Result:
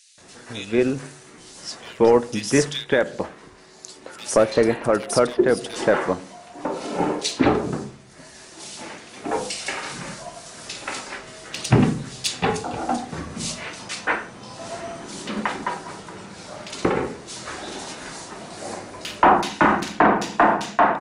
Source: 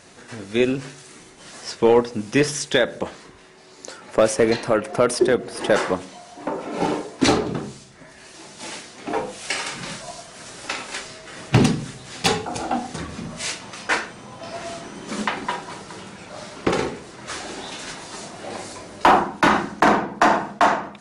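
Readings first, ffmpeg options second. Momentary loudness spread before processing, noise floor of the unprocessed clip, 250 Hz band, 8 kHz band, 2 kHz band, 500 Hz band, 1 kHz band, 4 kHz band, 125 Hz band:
19 LU, -46 dBFS, 0.0 dB, 0.0 dB, -1.0 dB, 0.0 dB, 0.0 dB, -2.0 dB, 0.0 dB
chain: -filter_complex "[0:a]acrossover=split=2800[a][b];[a]adelay=180[c];[c][b]amix=inputs=2:normalize=0"

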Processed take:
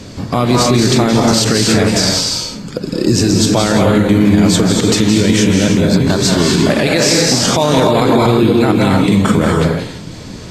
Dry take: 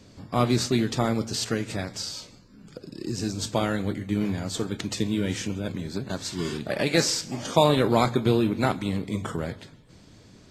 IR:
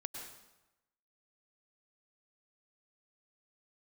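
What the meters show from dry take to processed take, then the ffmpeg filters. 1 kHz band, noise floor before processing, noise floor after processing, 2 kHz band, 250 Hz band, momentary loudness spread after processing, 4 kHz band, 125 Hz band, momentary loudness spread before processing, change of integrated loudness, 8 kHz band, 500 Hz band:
+12.0 dB, -52 dBFS, -29 dBFS, +14.5 dB, +16.0 dB, 7 LU, +15.5 dB, +15.0 dB, 11 LU, +14.5 dB, +16.5 dB, +13.5 dB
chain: -filter_complex "[0:a]acompressor=threshold=-27dB:ratio=2[a];[1:a]atrim=start_sample=2205,afade=t=out:st=0.26:d=0.01,atrim=end_sample=11907,asetrate=26460,aresample=44100[b];[a][b]afir=irnorm=-1:irlink=0,alimiter=level_in=21.5dB:limit=-1dB:release=50:level=0:latency=1,volume=-1dB"

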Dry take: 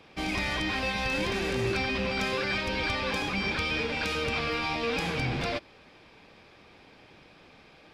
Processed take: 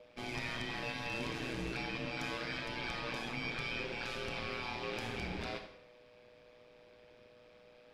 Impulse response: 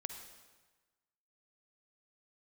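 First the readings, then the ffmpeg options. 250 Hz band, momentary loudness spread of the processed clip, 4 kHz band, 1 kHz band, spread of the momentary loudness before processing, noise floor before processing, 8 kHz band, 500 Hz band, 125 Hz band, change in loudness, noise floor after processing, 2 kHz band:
-10.0 dB, 2 LU, -10.0 dB, -10.0 dB, 2 LU, -55 dBFS, -10.0 dB, -11.0 dB, -10.0 dB, -10.0 dB, -61 dBFS, -10.0 dB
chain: -filter_complex "[0:a]aeval=exprs='val(0)+0.00708*sin(2*PI*550*n/s)':c=same,aeval=exprs='val(0)*sin(2*PI*59*n/s)':c=same[a];[1:a]atrim=start_sample=2205,asetrate=79380,aresample=44100[b];[a][b]afir=irnorm=-1:irlink=0"

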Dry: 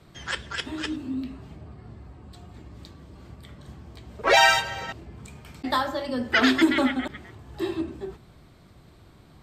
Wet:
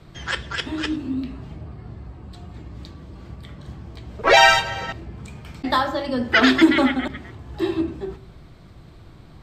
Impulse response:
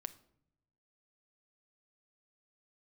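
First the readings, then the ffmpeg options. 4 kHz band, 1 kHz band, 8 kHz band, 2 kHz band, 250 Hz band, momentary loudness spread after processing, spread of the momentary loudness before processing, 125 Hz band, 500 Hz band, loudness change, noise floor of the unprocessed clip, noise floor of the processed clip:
+4.0 dB, +4.5 dB, +1.5 dB, +4.5 dB, +5.0 dB, 24 LU, 20 LU, +7.0 dB, +5.0 dB, +4.5 dB, -53 dBFS, -46 dBFS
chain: -filter_complex "[0:a]asplit=2[a][b];[1:a]atrim=start_sample=2205,lowpass=7.5k,lowshelf=f=110:g=11.5[c];[b][c]afir=irnorm=-1:irlink=0,volume=2.5dB[d];[a][d]amix=inputs=2:normalize=0,volume=-1dB"

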